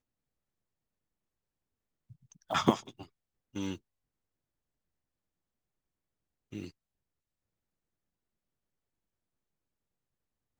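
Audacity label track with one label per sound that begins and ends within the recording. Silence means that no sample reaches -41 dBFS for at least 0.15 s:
2.500000	3.030000	sound
3.550000	3.750000	sound
6.530000	6.680000	sound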